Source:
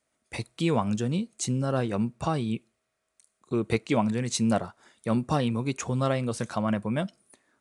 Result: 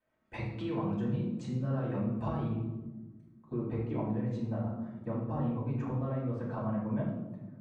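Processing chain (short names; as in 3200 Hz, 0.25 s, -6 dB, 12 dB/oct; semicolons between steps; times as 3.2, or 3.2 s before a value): compressor 6:1, threshold -33 dBFS, peak gain reduction 13.5 dB; LPF 2000 Hz 12 dB/oct, from 2.48 s 1200 Hz; reverb RT60 1.2 s, pre-delay 3 ms, DRR -6 dB; gain -7.5 dB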